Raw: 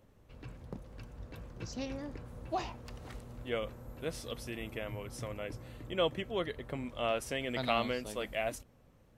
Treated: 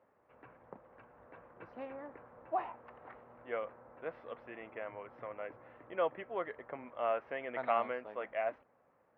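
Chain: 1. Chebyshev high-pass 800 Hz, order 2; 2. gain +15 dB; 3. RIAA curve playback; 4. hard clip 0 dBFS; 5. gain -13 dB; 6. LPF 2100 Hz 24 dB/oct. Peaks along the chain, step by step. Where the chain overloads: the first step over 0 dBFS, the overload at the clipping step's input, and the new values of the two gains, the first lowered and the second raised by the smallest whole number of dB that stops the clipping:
-17.0, -2.0, -2.5, -2.5, -15.5, -17.5 dBFS; no overload

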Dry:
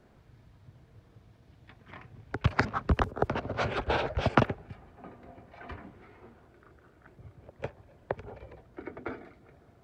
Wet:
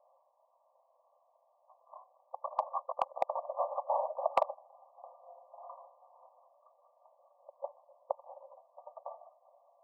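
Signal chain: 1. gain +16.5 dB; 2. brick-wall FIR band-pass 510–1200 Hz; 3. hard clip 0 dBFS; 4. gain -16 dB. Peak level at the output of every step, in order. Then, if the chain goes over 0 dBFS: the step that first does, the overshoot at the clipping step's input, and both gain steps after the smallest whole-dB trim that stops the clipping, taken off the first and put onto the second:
+9.0, +6.5, 0.0, -16.0 dBFS; step 1, 6.5 dB; step 1 +9.5 dB, step 4 -9 dB

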